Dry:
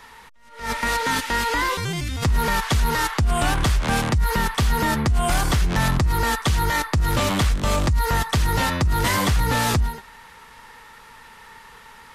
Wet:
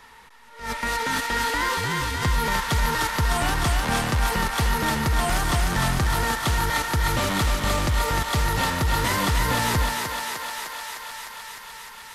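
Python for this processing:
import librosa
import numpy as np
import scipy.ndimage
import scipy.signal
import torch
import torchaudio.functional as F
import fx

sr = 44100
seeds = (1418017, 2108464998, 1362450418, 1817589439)

p1 = x + fx.echo_thinned(x, sr, ms=304, feedback_pct=80, hz=410.0, wet_db=-3.5, dry=0)
y = p1 * 10.0 ** (-3.5 / 20.0)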